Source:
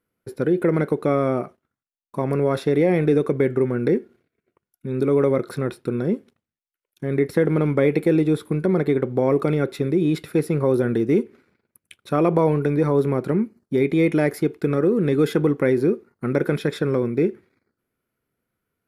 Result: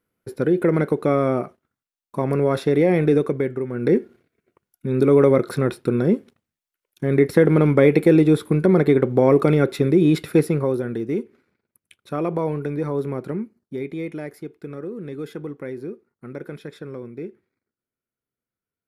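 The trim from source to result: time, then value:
3.17 s +1 dB
3.66 s -7 dB
3.97 s +4 dB
10.39 s +4 dB
10.83 s -5.5 dB
13.25 s -5.5 dB
14.29 s -13 dB

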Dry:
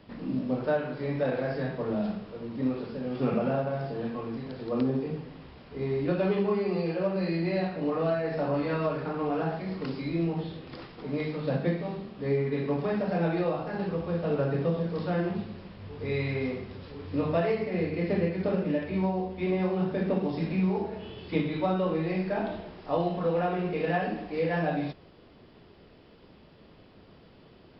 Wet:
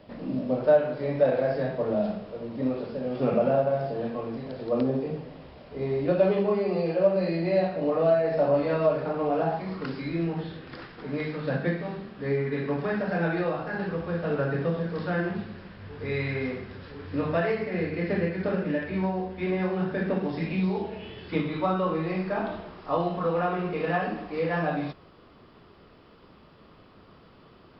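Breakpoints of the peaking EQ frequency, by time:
peaking EQ +9 dB 0.58 oct
9.40 s 600 Hz
9.90 s 1.6 kHz
20.36 s 1.6 kHz
20.67 s 4.4 kHz
21.44 s 1.2 kHz

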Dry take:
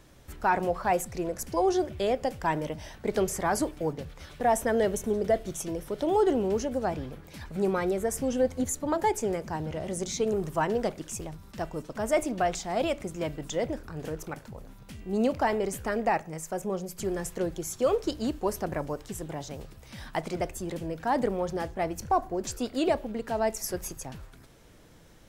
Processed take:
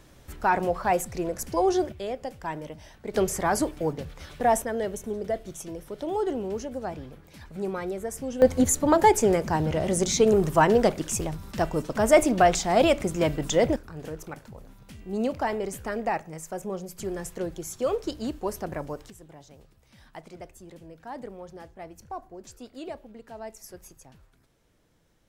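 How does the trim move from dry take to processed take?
+2 dB
from 1.92 s -5.5 dB
from 3.14 s +2.5 dB
from 4.62 s -4 dB
from 8.42 s +8 dB
from 13.76 s -1.5 dB
from 19.10 s -12 dB

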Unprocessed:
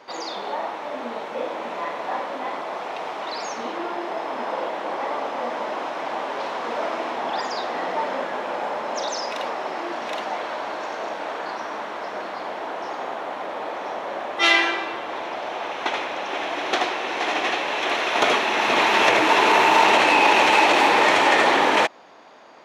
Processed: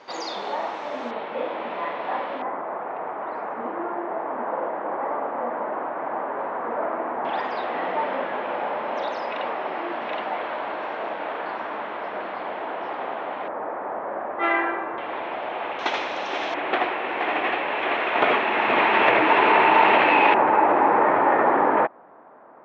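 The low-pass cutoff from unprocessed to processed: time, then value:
low-pass 24 dB/octave
7.4 kHz
from 1.11 s 3.5 kHz
from 2.42 s 1.7 kHz
from 7.25 s 3.1 kHz
from 13.48 s 1.7 kHz
from 14.98 s 3 kHz
from 15.79 s 6.3 kHz
from 16.54 s 2.7 kHz
from 20.34 s 1.5 kHz

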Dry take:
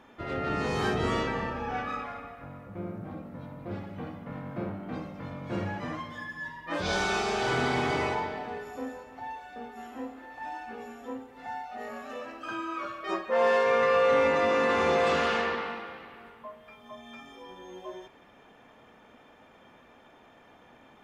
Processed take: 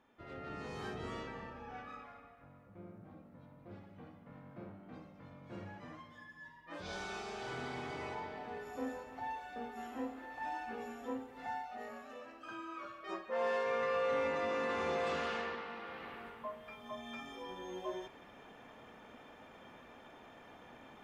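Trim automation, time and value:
7.96 s -15 dB
8.91 s -2.5 dB
11.44 s -2.5 dB
12.14 s -11 dB
15.67 s -11 dB
16.08 s 0 dB

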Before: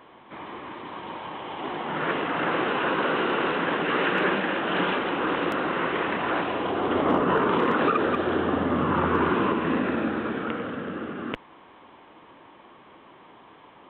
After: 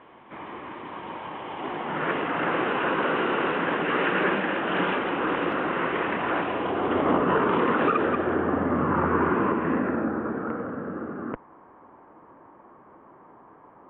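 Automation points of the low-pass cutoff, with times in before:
low-pass 24 dB/octave
7.97 s 3 kHz
8.39 s 2.1 kHz
9.72 s 2.1 kHz
10.12 s 1.5 kHz

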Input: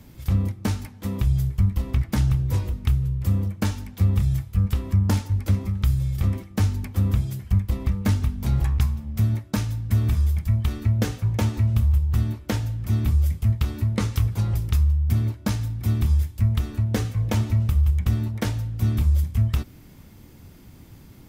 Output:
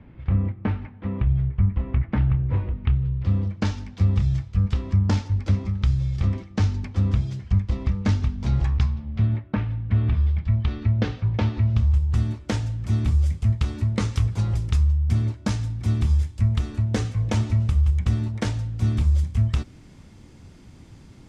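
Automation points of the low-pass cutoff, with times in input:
low-pass 24 dB/octave
2.67 s 2.5 kHz
3.70 s 6.1 kHz
8.70 s 6.1 kHz
9.57 s 2.6 kHz
10.63 s 4.3 kHz
11.61 s 4.3 kHz
12.01 s 8.5 kHz

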